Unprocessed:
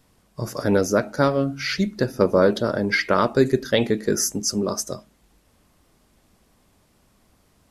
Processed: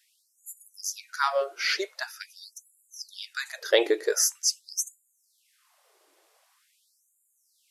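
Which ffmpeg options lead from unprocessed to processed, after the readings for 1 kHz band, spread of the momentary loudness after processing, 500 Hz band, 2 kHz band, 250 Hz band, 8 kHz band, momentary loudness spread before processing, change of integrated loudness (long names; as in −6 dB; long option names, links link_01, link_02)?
−7.5 dB, 21 LU, −9.0 dB, −5.0 dB, −19.0 dB, 0.0 dB, 9 LU, −6.0 dB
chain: -af "afftfilt=real='re*gte(b*sr/1024,300*pow(6900/300,0.5+0.5*sin(2*PI*0.45*pts/sr)))':imag='im*gte(b*sr/1024,300*pow(6900/300,0.5+0.5*sin(2*PI*0.45*pts/sr)))':win_size=1024:overlap=0.75"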